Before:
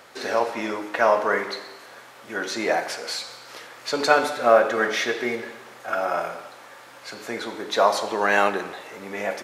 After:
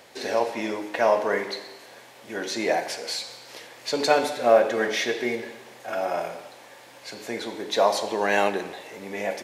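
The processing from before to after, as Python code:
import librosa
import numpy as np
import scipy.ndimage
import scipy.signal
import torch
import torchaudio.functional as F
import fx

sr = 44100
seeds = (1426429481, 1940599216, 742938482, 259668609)

y = fx.peak_eq(x, sr, hz=1300.0, db=-11.0, octaves=0.54)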